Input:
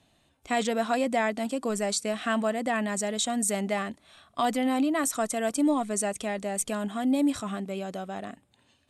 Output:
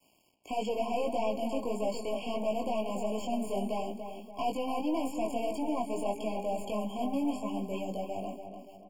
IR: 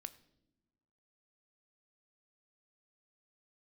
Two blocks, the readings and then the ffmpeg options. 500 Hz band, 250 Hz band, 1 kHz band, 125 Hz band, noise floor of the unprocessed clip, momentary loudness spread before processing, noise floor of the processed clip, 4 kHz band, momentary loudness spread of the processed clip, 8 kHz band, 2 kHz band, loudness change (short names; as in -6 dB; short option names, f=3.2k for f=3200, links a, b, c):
-2.5 dB, -6.5 dB, -4.0 dB, n/a, -67 dBFS, 9 LU, -61 dBFS, -8.5 dB, 6 LU, -18.0 dB, -14.0 dB, -6.0 dB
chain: -filter_complex "[0:a]highpass=200,bandreject=f=406.9:t=h:w=4,bandreject=f=813.8:t=h:w=4,bandreject=f=1.2207k:t=h:w=4,bandreject=f=1.6276k:t=h:w=4,bandreject=f=2.0345k:t=h:w=4,bandreject=f=2.4414k:t=h:w=4,bandreject=f=2.8483k:t=h:w=4,bandreject=f=3.2552k:t=h:w=4,bandreject=f=3.6621k:t=h:w=4,bandreject=f=4.069k:t=h:w=4,bandreject=f=4.4759k:t=h:w=4,bandreject=f=4.8828k:t=h:w=4,bandreject=f=5.2897k:t=h:w=4,bandreject=f=5.6966k:t=h:w=4,bandreject=f=6.1035k:t=h:w=4,bandreject=f=6.5104k:t=h:w=4,bandreject=f=6.9173k:t=h:w=4,bandreject=f=7.3242k:t=h:w=4,bandreject=f=7.7311k:t=h:w=4,bandreject=f=8.138k:t=h:w=4,bandreject=f=8.5449k:t=h:w=4,bandreject=f=8.9518k:t=h:w=4,bandreject=f=9.3587k:t=h:w=4,bandreject=f=9.7656k:t=h:w=4,bandreject=f=10.1725k:t=h:w=4,bandreject=f=10.5794k:t=h:w=4,bandreject=f=10.9863k:t=h:w=4,bandreject=f=11.3932k:t=h:w=4,bandreject=f=11.8001k:t=h:w=4,bandreject=f=12.207k:t=h:w=4,bandreject=f=12.6139k:t=h:w=4,bandreject=f=13.0208k:t=h:w=4,aeval=exprs='(tanh(28.2*val(0)+0.3)-tanh(0.3))/28.2':c=same,highshelf=f=11k:g=3.5,acrossover=split=280|3000[a][b][c];[a]acompressor=threshold=-39dB:ratio=6[d];[d][b][c]amix=inputs=3:normalize=0,flanger=delay=18.5:depth=3.3:speed=1.6,acrusher=bits=10:mix=0:aa=0.000001,acrossover=split=3400[e][f];[f]acompressor=threshold=-52dB:ratio=4:attack=1:release=60[g];[e][g]amix=inputs=2:normalize=0,asplit=2[h][i];[i]adelay=288,lowpass=f=2.1k:p=1,volume=-7.5dB,asplit=2[j][k];[k]adelay=288,lowpass=f=2.1k:p=1,volume=0.46,asplit=2[l][m];[m]adelay=288,lowpass=f=2.1k:p=1,volume=0.46,asplit=2[n][o];[o]adelay=288,lowpass=f=2.1k:p=1,volume=0.46,asplit=2[p][q];[q]adelay=288,lowpass=f=2.1k:p=1,volume=0.46[r];[j][l][n][p][r]amix=inputs=5:normalize=0[s];[h][s]amix=inputs=2:normalize=0,afftfilt=real='re*eq(mod(floor(b*sr/1024/1100),2),0)':imag='im*eq(mod(floor(b*sr/1024/1100),2),0)':win_size=1024:overlap=0.75,volume=4.5dB"